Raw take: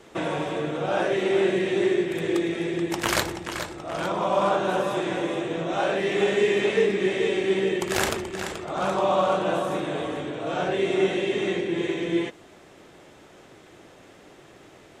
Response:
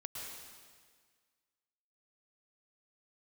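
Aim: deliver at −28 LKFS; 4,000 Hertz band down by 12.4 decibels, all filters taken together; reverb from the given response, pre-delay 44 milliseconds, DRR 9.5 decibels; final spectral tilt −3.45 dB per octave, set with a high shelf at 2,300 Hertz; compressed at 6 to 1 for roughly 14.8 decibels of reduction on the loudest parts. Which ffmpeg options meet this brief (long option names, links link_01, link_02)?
-filter_complex "[0:a]highshelf=frequency=2300:gain=-8.5,equalizer=frequency=4000:width_type=o:gain=-9,acompressor=threshold=-35dB:ratio=6,asplit=2[link_01][link_02];[1:a]atrim=start_sample=2205,adelay=44[link_03];[link_02][link_03]afir=irnorm=-1:irlink=0,volume=-8.5dB[link_04];[link_01][link_04]amix=inputs=2:normalize=0,volume=9.5dB"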